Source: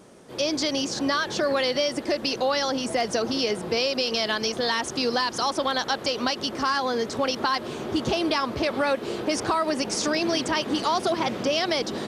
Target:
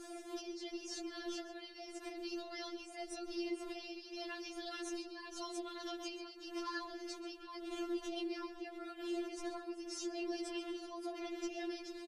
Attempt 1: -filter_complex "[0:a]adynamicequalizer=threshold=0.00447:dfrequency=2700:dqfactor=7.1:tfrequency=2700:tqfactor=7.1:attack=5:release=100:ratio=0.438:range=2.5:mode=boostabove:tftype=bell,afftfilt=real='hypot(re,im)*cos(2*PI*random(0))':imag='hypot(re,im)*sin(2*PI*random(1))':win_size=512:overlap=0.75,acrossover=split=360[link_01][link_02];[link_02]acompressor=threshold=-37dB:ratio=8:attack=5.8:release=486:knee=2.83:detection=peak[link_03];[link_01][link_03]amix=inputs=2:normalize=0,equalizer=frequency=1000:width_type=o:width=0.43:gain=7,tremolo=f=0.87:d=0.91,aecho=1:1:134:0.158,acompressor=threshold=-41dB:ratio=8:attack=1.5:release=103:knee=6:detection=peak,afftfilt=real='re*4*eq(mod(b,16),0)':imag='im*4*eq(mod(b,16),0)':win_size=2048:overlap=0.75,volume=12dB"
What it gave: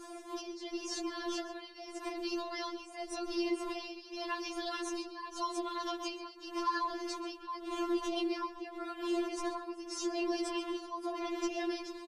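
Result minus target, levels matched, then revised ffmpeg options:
downward compressor: peak gain reduction −6 dB; 1,000 Hz band +4.5 dB
-filter_complex "[0:a]adynamicequalizer=threshold=0.00447:dfrequency=2700:dqfactor=7.1:tfrequency=2700:tqfactor=7.1:attack=5:release=100:ratio=0.438:range=2.5:mode=boostabove:tftype=bell,afftfilt=real='hypot(re,im)*cos(2*PI*random(0))':imag='hypot(re,im)*sin(2*PI*random(1))':win_size=512:overlap=0.75,acrossover=split=360[link_01][link_02];[link_02]acompressor=threshold=-37dB:ratio=8:attack=5.8:release=486:knee=2.83:detection=peak[link_03];[link_01][link_03]amix=inputs=2:normalize=0,equalizer=frequency=1000:width_type=o:width=0.43:gain=-5,tremolo=f=0.87:d=0.91,aecho=1:1:134:0.158,acompressor=threshold=-48.5dB:ratio=8:attack=1.5:release=103:knee=6:detection=peak,afftfilt=real='re*4*eq(mod(b,16),0)':imag='im*4*eq(mod(b,16),0)':win_size=2048:overlap=0.75,volume=12dB"

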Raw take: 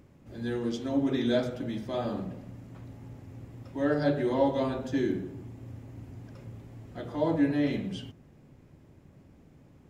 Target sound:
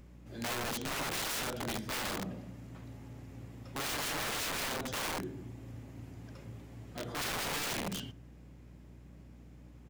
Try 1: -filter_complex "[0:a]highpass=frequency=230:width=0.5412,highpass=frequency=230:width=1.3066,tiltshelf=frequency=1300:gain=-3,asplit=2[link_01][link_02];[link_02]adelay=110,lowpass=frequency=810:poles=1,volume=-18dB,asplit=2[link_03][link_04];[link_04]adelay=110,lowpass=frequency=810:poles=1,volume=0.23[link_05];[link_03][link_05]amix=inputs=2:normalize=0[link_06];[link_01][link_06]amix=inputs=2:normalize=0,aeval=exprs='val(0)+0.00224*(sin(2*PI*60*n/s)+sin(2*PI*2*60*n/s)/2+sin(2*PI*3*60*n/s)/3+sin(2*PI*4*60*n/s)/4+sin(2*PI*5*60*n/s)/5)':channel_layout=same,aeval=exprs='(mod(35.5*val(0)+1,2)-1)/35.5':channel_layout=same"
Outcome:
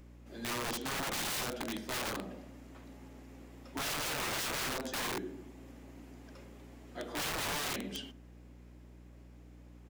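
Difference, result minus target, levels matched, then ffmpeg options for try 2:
125 Hz band −4.0 dB
-filter_complex "[0:a]highpass=frequency=90:width=0.5412,highpass=frequency=90:width=1.3066,tiltshelf=frequency=1300:gain=-3,asplit=2[link_01][link_02];[link_02]adelay=110,lowpass=frequency=810:poles=1,volume=-18dB,asplit=2[link_03][link_04];[link_04]adelay=110,lowpass=frequency=810:poles=1,volume=0.23[link_05];[link_03][link_05]amix=inputs=2:normalize=0[link_06];[link_01][link_06]amix=inputs=2:normalize=0,aeval=exprs='val(0)+0.00224*(sin(2*PI*60*n/s)+sin(2*PI*2*60*n/s)/2+sin(2*PI*3*60*n/s)/3+sin(2*PI*4*60*n/s)/4+sin(2*PI*5*60*n/s)/5)':channel_layout=same,aeval=exprs='(mod(35.5*val(0)+1,2)-1)/35.5':channel_layout=same"

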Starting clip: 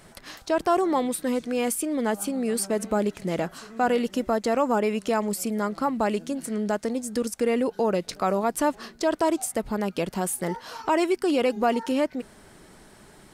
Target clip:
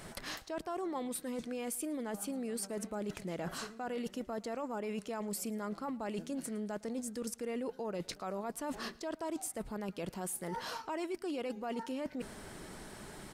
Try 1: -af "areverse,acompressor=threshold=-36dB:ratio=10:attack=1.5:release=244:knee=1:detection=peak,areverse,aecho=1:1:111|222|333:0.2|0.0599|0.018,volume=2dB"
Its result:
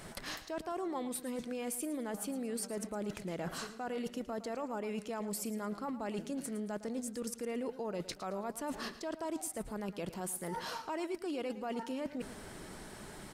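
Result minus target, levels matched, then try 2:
echo-to-direct +9.5 dB
-af "areverse,acompressor=threshold=-36dB:ratio=10:attack=1.5:release=244:knee=1:detection=peak,areverse,aecho=1:1:111|222:0.0668|0.0201,volume=2dB"

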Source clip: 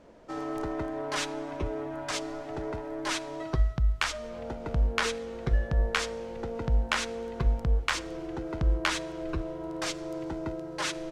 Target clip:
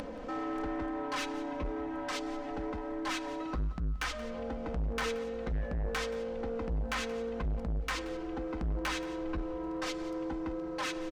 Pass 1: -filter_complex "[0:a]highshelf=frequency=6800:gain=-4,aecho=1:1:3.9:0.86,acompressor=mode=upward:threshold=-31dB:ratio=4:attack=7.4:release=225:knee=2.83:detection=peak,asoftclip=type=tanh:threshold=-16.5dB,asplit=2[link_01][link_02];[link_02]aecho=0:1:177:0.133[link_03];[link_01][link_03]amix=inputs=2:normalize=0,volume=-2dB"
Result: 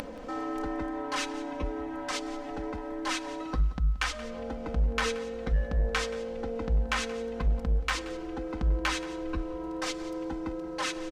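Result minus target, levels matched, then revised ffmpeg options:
soft clipping: distortion −11 dB; 8,000 Hz band +2.5 dB
-filter_complex "[0:a]highshelf=frequency=6800:gain=-13.5,aecho=1:1:3.9:0.86,acompressor=mode=upward:threshold=-31dB:ratio=4:attack=7.4:release=225:knee=2.83:detection=peak,asoftclip=type=tanh:threshold=-27.5dB,asplit=2[link_01][link_02];[link_02]aecho=0:1:177:0.133[link_03];[link_01][link_03]amix=inputs=2:normalize=0,volume=-2dB"

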